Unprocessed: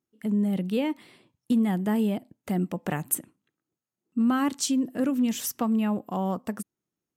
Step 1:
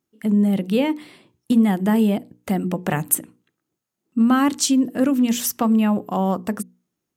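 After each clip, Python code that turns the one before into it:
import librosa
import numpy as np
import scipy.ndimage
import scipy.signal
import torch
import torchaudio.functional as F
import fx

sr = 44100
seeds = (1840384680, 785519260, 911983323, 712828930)

y = fx.hum_notches(x, sr, base_hz=60, count=8)
y = F.gain(torch.from_numpy(y), 7.5).numpy()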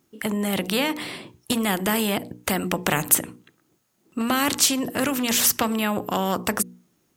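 y = fx.spectral_comp(x, sr, ratio=2.0)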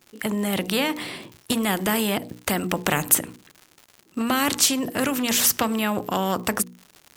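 y = fx.dmg_crackle(x, sr, seeds[0], per_s=160.0, level_db=-34.0)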